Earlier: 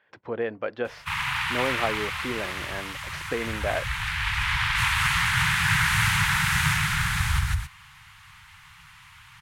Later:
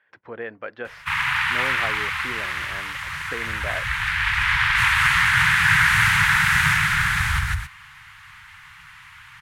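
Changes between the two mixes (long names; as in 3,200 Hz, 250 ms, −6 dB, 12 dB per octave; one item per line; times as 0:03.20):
speech −6.0 dB
master: add parametric band 1,700 Hz +8 dB 1.2 octaves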